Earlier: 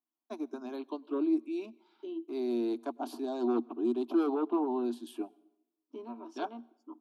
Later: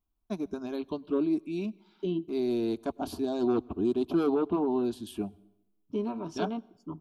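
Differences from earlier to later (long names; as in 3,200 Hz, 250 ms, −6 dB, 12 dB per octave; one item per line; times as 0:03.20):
second voice +6.0 dB
master: remove Chebyshev high-pass with heavy ripple 230 Hz, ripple 6 dB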